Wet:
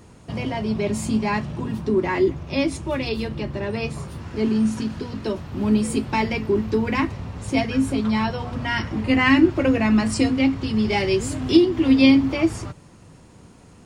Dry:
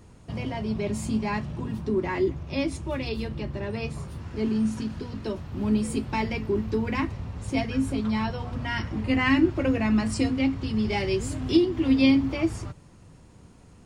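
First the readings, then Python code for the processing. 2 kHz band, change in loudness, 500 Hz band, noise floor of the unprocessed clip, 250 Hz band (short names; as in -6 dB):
+6.0 dB, +5.0 dB, +5.5 dB, -51 dBFS, +5.0 dB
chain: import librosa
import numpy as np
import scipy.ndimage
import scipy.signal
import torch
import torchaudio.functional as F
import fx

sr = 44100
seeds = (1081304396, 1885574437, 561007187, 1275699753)

y = fx.low_shelf(x, sr, hz=83.0, db=-9.0)
y = F.gain(torch.from_numpy(y), 6.0).numpy()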